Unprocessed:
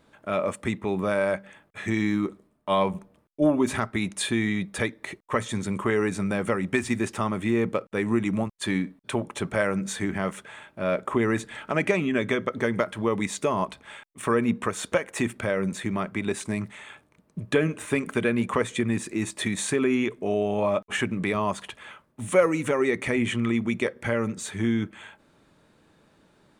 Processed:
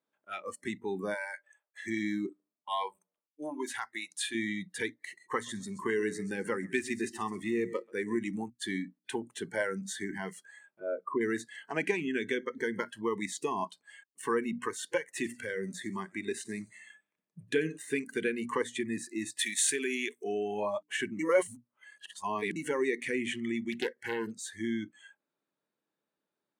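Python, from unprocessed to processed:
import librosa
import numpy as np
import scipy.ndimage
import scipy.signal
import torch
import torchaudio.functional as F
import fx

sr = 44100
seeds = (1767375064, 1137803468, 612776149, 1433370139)

y = fx.highpass(x, sr, hz=500.0, slope=24, at=(1.14, 1.84))
y = fx.peak_eq(y, sr, hz=160.0, db=-12.5, octaves=2.4, at=(2.69, 4.35))
y = fx.echo_feedback(y, sr, ms=132, feedback_pct=38, wet_db=-13.0, at=(4.91, 8.19))
y = fx.envelope_sharpen(y, sr, power=1.5, at=(10.8, 11.21))
y = fx.echo_feedback(y, sr, ms=91, feedback_pct=55, wet_db=-17.0, at=(15.16, 17.77), fade=0.02)
y = fx.tilt_eq(y, sr, slope=3.0, at=(19.39, 20.24))
y = fx.doppler_dist(y, sr, depth_ms=0.52, at=(23.72, 24.31))
y = fx.edit(y, sr, fx.reverse_span(start_s=21.19, length_s=1.37), tone=tone)
y = fx.hum_notches(y, sr, base_hz=60, count=5)
y = fx.noise_reduce_blind(y, sr, reduce_db=21)
y = scipy.signal.sosfilt(scipy.signal.butter(2, 230.0, 'highpass', fs=sr, output='sos'), y)
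y = F.gain(torch.from_numpy(y), -5.5).numpy()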